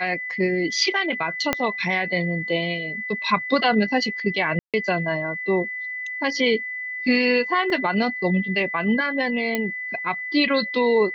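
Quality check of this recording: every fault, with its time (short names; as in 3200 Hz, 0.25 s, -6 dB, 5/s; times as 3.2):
tone 2000 Hz -28 dBFS
1.53 pop -5 dBFS
4.59–4.74 gap 0.147 s
7.7 gap 2.4 ms
9.55 pop -9 dBFS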